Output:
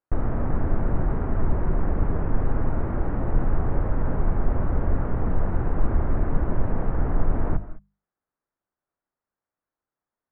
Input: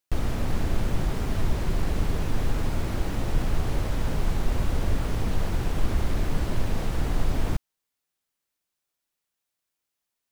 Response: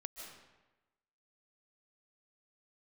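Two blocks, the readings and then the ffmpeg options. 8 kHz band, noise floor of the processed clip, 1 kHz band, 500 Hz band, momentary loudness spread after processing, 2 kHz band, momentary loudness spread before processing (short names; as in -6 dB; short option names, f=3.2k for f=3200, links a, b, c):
under -35 dB, under -85 dBFS, +2.5 dB, +3.0 dB, 2 LU, -3.0 dB, 2 LU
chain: -filter_complex "[0:a]lowpass=f=1.6k:w=0.5412,lowpass=f=1.6k:w=1.3066,bandreject=f=50:t=h:w=6,bandreject=f=100:t=h:w=6,bandreject=f=150:t=h:w=6,bandreject=f=200:t=h:w=6,asplit=2[a][b];[1:a]atrim=start_sample=2205,afade=t=out:st=0.27:d=0.01,atrim=end_sample=12348,lowpass=2.6k[c];[b][c]afir=irnorm=-1:irlink=0,volume=-3dB[d];[a][d]amix=inputs=2:normalize=0"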